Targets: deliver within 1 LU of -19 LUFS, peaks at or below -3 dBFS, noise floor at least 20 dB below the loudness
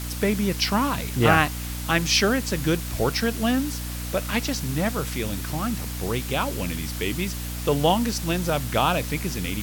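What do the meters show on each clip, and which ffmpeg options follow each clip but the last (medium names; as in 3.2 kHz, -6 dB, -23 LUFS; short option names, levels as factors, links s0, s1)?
hum 60 Hz; highest harmonic 300 Hz; hum level -30 dBFS; noise floor -31 dBFS; noise floor target -44 dBFS; loudness -24.0 LUFS; peak level -4.0 dBFS; loudness target -19.0 LUFS
-> -af "bandreject=f=60:t=h:w=4,bandreject=f=120:t=h:w=4,bandreject=f=180:t=h:w=4,bandreject=f=240:t=h:w=4,bandreject=f=300:t=h:w=4"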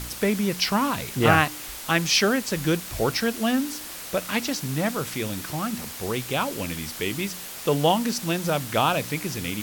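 hum not found; noise floor -37 dBFS; noise floor target -45 dBFS
-> -af "afftdn=nr=8:nf=-37"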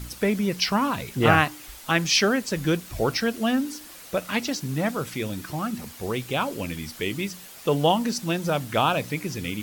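noise floor -44 dBFS; noise floor target -45 dBFS
-> -af "afftdn=nr=6:nf=-44"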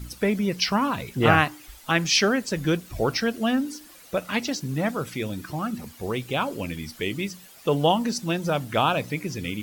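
noise floor -49 dBFS; loudness -25.0 LUFS; peak level -4.0 dBFS; loudness target -19.0 LUFS
-> -af "volume=2,alimiter=limit=0.708:level=0:latency=1"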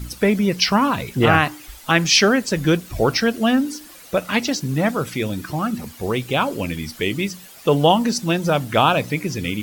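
loudness -19.5 LUFS; peak level -3.0 dBFS; noise floor -43 dBFS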